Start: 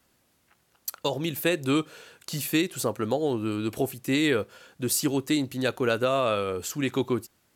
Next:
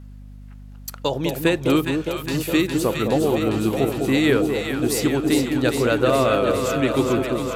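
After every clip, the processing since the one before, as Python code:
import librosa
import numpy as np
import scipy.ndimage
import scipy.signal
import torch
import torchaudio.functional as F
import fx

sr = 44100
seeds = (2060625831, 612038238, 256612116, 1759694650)

y = fx.high_shelf(x, sr, hz=4600.0, db=-7.0)
y = fx.echo_alternate(y, sr, ms=205, hz=850.0, feedback_pct=86, wet_db=-4.5)
y = fx.add_hum(y, sr, base_hz=50, snr_db=19)
y = y * 10.0 ** (5.0 / 20.0)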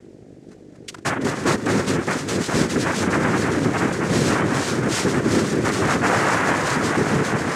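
y = 10.0 ** (-18.5 / 20.0) * np.tanh(x / 10.0 ** (-18.5 / 20.0))
y = fx.noise_vocoder(y, sr, seeds[0], bands=3)
y = y + 10.0 ** (-12.5 / 20.0) * np.pad(y, (int(330 * sr / 1000.0), 0))[:len(y)]
y = y * 10.0 ** (3.5 / 20.0)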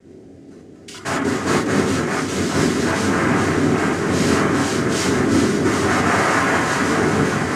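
y = fx.rev_gated(x, sr, seeds[1], gate_ms=110, shape='flat', drr_db=-6.0)
y = y * 10.0 ** (-5.0 / 20.0)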